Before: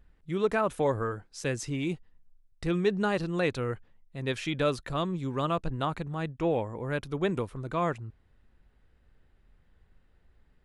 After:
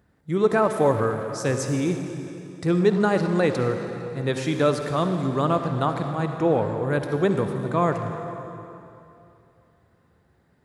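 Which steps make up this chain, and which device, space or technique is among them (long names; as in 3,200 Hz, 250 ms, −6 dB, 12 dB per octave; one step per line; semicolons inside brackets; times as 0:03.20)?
saturated reverb return (on a send at −3 dB: convolution reverb RT60 2.7 s, pre-delay 49 ms + soft clipping −28.5 dBFS, distortion −11 dB)
on the sum: high-pass filter 86 Hz 24 dB per octave
parametric band 2,800 Hz −8.5 dB 0.94 octaves
level +7 dB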